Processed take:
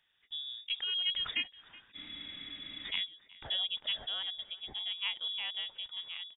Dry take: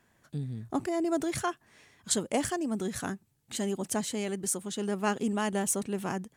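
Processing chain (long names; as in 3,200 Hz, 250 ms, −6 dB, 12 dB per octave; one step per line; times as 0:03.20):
source passing by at 0:02.50, 22 m/s, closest 25 metres
on a send: single-tap delay 373 ms −21.5 dB
on the sum: voice inversion scrambler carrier 3,600 Hz
frozen spectrum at 0:01.97, 0.87 s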